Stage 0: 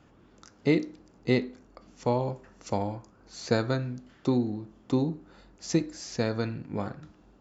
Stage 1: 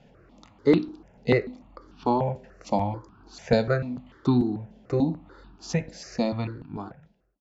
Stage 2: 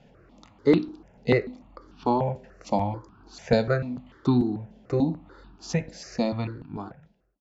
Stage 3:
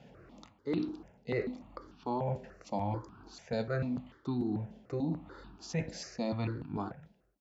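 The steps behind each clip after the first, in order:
fade-out on the ending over 1.29 s; low-pass filter 4,100 Hz 12 dB per octave; step-sequenced phaser 6.8 Hz 320–2,000 Hz; level +7 dB
no processing that can be heard
high-pass filter 52 Hz; reversed playback; downward compressor 12 to 1, threshold −30 dBFS, peak gain reduction 17.5 dB; reversed playback

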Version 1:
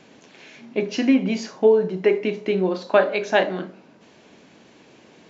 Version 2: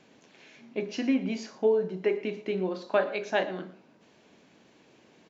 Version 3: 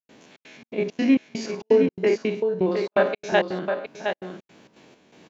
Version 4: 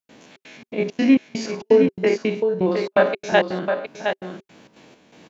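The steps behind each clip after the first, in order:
single-tap delay 116 ms −17.5 dB; level −8.5 dB
spectrum averaged block by block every 50 ms; gate pattern ".xxx.xx.xx.xx." 167 BPM −60 dB; single-tap delay 714 ms −6.5 dB; level +8.5 dB
notch filter 390 Hz, Q 12; level +3.5 dB

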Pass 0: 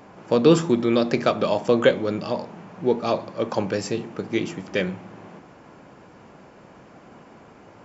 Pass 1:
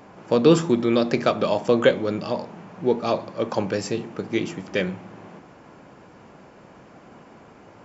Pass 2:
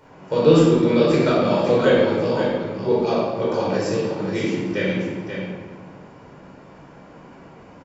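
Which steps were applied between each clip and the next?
no processing that can be heard
on a send: single-tap delay 531 ms −7.5 dB; on the sum: rectangular room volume 970 cubic metres, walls mixed, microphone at 4.7 metres; level −7.5 dB

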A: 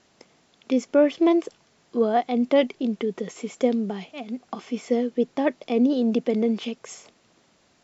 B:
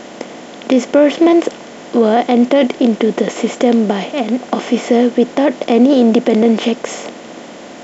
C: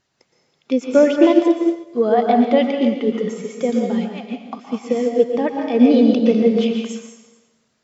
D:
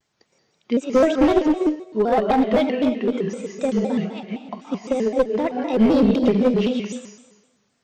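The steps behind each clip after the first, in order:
compressor on every frequency bin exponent 0.6; boost into a limiter +10.5 dB; level −1 dB
spectral dynamics exaggerated over time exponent 2; dense smooth reverb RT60 1.3 s, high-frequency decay 0.9×, pre-delay 105 ms, DRR 0.5 dB; expander for the loud parts 1.5 to 1, over −31 dBFS
asymmetric clip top −13 dBFS; pitch modulation by a square or saw wave square 3.9 Hz, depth 160 cents; level −2 dB

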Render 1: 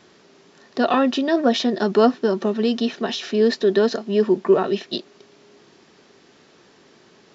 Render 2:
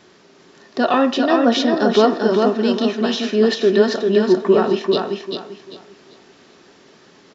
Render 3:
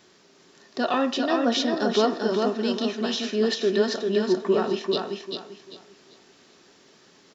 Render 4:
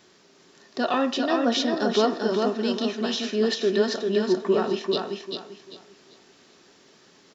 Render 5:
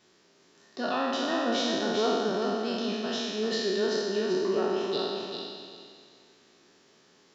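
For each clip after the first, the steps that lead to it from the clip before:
repeating echo 394 ms, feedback 27%, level −4 dB; on a send at −9 dB: convolution reverb, pre-delay 3 ms; on the sum: level +2 dB
high-shelf EQ 4,400 Hz +9.5 dB; level −8 dB
no processing that can be heard
peak hold with a decay on every bin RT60 1.87 s; echo through a band-pass that steps 154 ms, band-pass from 340 Hz, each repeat 1.4 octaves, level −8.5 dB; level −9 dB

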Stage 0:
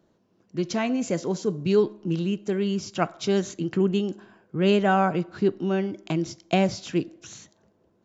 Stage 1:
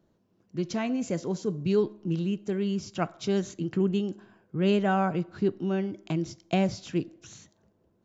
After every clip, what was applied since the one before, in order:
low-shelf EQ 160 Hz +8 dB
level −5.5 dB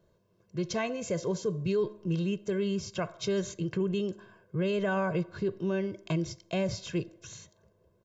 comb filter 1.9 ms, depth 74%
brickwall limiter −21.5 dBFS, peak gain reduction 8 dB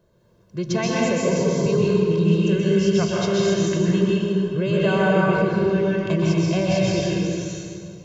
convolution reverb RT60 2.2 s, pre-delay 118 ms, DRR −5.5 dB
level +5 dB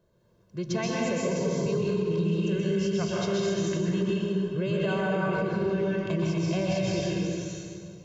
brickwall limiter −12.5 dBFS, peak gain reduction 5.5 dB
level −6 dB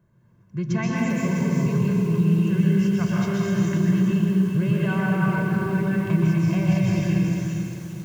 graphic EQ with 10 bands 125 Hz +11 dB, 250 Hz +6 dB, 500 Hz −9 dB, 1,000 Hz +4 dB, 2,000 Hz +7 dB, 4,000 Hz −9 dB
feedback echo at a low word length 396 ms, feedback 35%, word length 7 bits, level −7.5 dB

